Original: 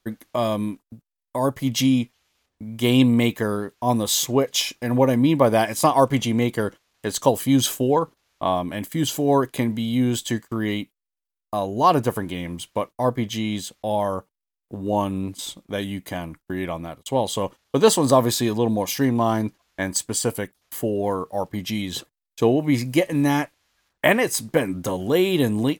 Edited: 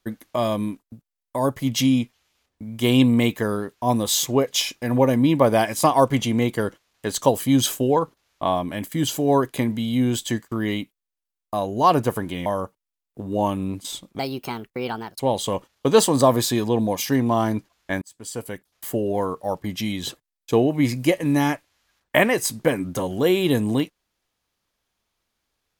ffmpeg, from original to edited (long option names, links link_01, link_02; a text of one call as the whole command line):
ffmpeg -i in.wav -filter_complex "[0:a]asplit=5[link_01][link_02][link_03][link_04][link_05];[link_01]atrim=end=12.462[link_06];[link_02]atrim=start=13.998:end=15.734[link_07];[link_03]atrim=start=15.73:end=17.09,asetpts=PTS-STARTPTS,asetrate=59535,aresample=44100[link_08];[link_04]atrim=start=17.086:end=19.91,asetpts=PTS-STARTPTS,afade=type=out:start_time=2.82:duration=0.004:curve=hsin[link_09];[link_05]atrim=start=19.91,asetpts=PTS-STARTPTS,afade=type=in:duration=0.89[link_10];[link_06][link_07]acrossfade=duration=0.004:curve1=hsin:curve2=hsin[link_11];[link_11][link_08]acrossfade=duration=0.004:curve1=hsin:curve2=hsin[link_12];[link_09][link_10]concat=n=2:v=0:a=1[link_13];[link_12][link_13]acrossfade=duration=0.004:curve1=hsin:curve2=hsin" out.wav